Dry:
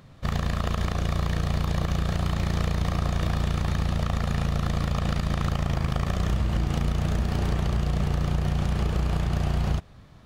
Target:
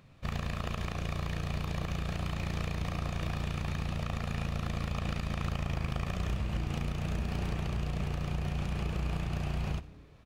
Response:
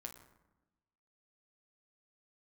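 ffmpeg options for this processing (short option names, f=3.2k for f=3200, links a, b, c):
-filter_complex "[0:a]equalizer=f=2.5k:w=5:g=8.5,asplit=6[a][b][c][d][e][f];[b]adelay=84,afreqshift=-120,volume=-23dB[g];[c]adelay=168,afreqshift=-240,volume=-27.2dB[h];[d]adelay=252,afreqshift=-360,volume=-31.3dB[i];[e]adelay=336,afreqshift=-480,volume=-35.5dB[j];[f]adelay=420,afreqshift=-600,volume=-39.6dB[k];[a][g][h][i][j][k]amix=inputs=6:normalize=0,asplit=2[l][m];[1:a]atrim=start_sample=2205,adelay=62[n];[m][n]afir=irnorm=-1:irlink=0,volume=-13.5dB[o];[l][o]amix=inputs=2:normalize=0,volume=-8dB"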